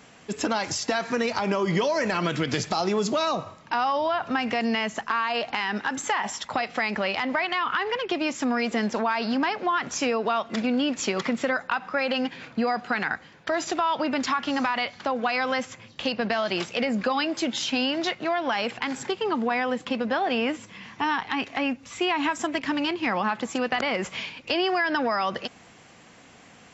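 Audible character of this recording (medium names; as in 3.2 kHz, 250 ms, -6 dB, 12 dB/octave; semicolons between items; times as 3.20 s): noise floor -51 dBFS; spectral tilt -3.5 dB/octave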